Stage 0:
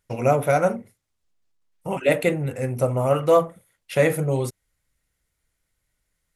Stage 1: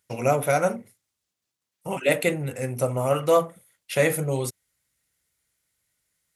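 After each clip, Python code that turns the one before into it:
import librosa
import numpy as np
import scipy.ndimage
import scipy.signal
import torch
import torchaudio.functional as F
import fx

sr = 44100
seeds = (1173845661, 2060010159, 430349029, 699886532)

y = scipy.signal.sosfilt(scipy.signal.butter(2, 88.0, 'highpass', fs=sr, output='sos'), x)
y = fx.high_shelf(y, sr, hz=2500.0, db=8.0)
y = y * 10.0 ** (-3.0 / 20.0)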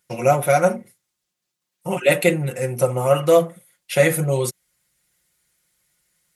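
y = x + 0.65 * np.pad(x, (int(5.6 * sr / 1000.0), 0))[:len(x)]
y = fx.rider(y, sr, range_db=10, speed_s=2.0)
y = y * 10.0 ** (3.5 / 20.0)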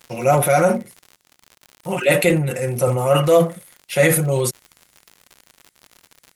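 y = fx.transient(x, sr, attack_db=-2, sustain_db=7)
y = fx.dmg_crackle(y, sr, seeds[0], per_s=86.0, level_db=-31.0)
y = y * 10.0 ** (1.0 / 20.0)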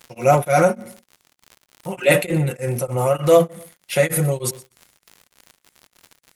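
y = fx.echo_feedback(x, sr, ms=122, feedback_pct=27, wet_db=-21)
y = y * np.abs(np.cos(np.pi * 3.3 * np.arange(len(y)) / sr))
y = y * 10.0 ** (1.5 / 20.0)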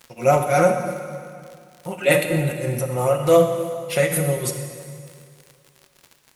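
y = fx.rev_plate(x, sr, seeds[1], rt60_s=2.3, hf_ratio=0.9, predelay_ms=0, drr_db=5.5)
y = y * 10.0 ** (-2.0 / 20.0)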